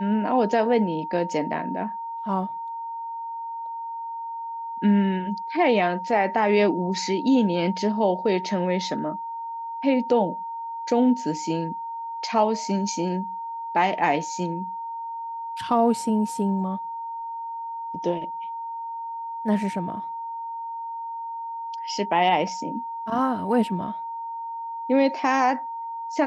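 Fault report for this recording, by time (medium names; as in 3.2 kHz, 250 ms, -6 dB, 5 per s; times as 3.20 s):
whine 920 Hz -30 dBFS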